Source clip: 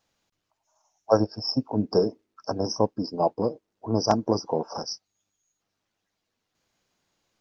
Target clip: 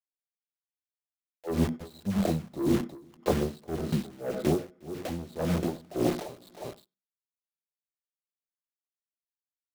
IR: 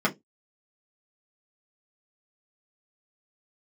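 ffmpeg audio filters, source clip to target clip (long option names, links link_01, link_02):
-filter_complex "[0:a]lowpass=2500,bandreject=frequency=60:width_type=h:width=6,bandreject=frequency=120:width_type=h:width=6,bandreject=frequency=180:width_type=h:width=6,bandreject=frequency=240:width_type=h:width=6,bandreject=frequency=300:width_type=h:width=6,bandreject=frequency=360:width_type=h:width=6,dynaudnorm=framelen=110:gausssize=3:maxgain=9dB,asetrate=33516,aresample=44100,flanger=delay=4.5:depth=3.7:regen=-79:speed=0.56:shape=triangular,acrusher=bits=5:mix=0:aa=0.000001,asoftclip=type=tanh:threshold=-15.5dB,aecho=1:1:358:0.251,asplit=2[link_01][link_02];[1:a]atrim=start_sample=2205,adelay=90[link_03];[link_02][link_03]afir=irnorm=-1:irlink=0,volume=-29dB[link_04];[link_01][link_04]amix=inputs=2:normalize=0,aeval=exprs='val(0)*pow(10,-22*(0.5-0.5*cos(2*PI*1.8*n/s))/20)':channel_layout=same,volume=3dB"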